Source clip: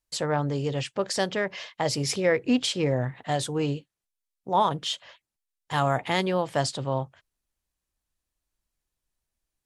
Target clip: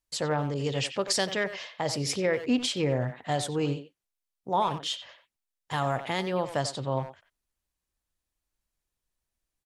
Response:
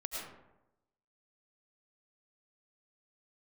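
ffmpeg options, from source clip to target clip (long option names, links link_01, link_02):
-filter_complex "[0:a]alimiter=limit=-14dB:level=0:latency=1:release=393,asplit=2[link_01][link_02];[link_02]adelay=90,highpass=300,lowpass=3400,asoftclip=type=hard:threshold=-23dB,volume=-9dB[link_03];[link_01][link_03]amix=inputs=2:normalize=0,asettb=1/sr,asplit=3[link_04][link_05][link_06];[link_04]atrim=end=0.544[link_07];[link_05]atrim=start=0.54:end=1.44,asetpts=PTS-STARTPTS,afade=type=in:duration=0.004:curve=qsin,afade=type=out:start_time=0.896:duration=0.004:curve=qsin,adynamicequalizer=threshold=0.00631:dfrequency=1800:dqfactor=0.7:tfrequency=1800:tqfactor=0.7:attack=5:release=100:ratio=0.375:range=3:mode=boostabove:tftype=highshelf[link_08];[link_06]atrim=start=1.436[link_09];[link_07][link_08]acrossfade=duration=0.004:curve1=hsin:curve2=qsin[link_10];[link_10][link_09]acrossfade=duration=0.004:curve1=qsin:curve2=hsin,volume=-1.5dB"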